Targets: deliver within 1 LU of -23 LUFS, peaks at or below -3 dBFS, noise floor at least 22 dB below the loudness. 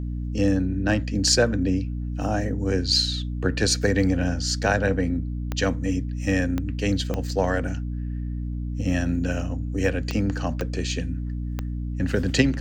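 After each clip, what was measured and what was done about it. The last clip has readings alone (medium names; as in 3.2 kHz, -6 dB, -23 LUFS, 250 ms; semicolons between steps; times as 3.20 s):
clicks found 6; hum 60 Hz; highest harmonic 300 Hz; hum level -26 dBFS; loudness -25.0 LUFS; peak level -5.0 dBFS; loudness target -23.0 LUFS
-> de-click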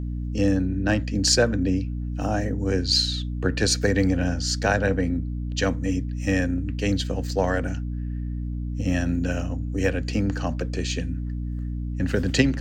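clicks found 1; hum 60 Hz; highest harmonic 300 Hz; hum level -26 dBFS
-> de-hum 60 Hz, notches 5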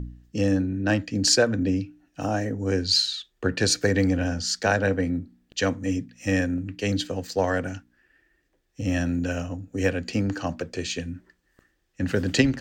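hum not found; loudness -25.5 LUFS; peak level -6.0 dBFS; loudness target -23.0 LUFS
-> trim +2.5 dB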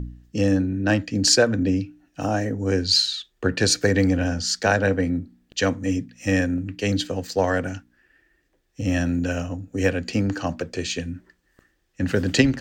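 loudness -23.0 LUFS; peak level -3.5 dBFS; noise floor -68 dBFS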